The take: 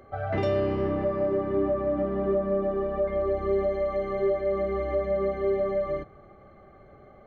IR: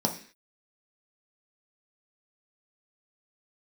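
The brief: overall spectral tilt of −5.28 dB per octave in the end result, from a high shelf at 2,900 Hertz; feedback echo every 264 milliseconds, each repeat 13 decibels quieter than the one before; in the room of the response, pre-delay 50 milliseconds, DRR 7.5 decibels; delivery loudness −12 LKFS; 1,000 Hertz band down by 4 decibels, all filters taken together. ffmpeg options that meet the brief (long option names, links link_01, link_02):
-filter_complex "[0:a]equalizer=frequency=1000:width_type=o:gain=-6.5,highshelf=frequency=2900:gain=7.5,aecho=1:1:264|528|792:0.224|0.0493|0.0108,asplit=2[link_01][link_02];[1:a]atrim=start_sample=2205,adelay=50[link_03];[link_02][link_03]afir=irnorm=-1:irlink=0,volume=-16.5dB[link_04];[link_01][link_04]amix=inputs=2:normalize=0,volume=14dB"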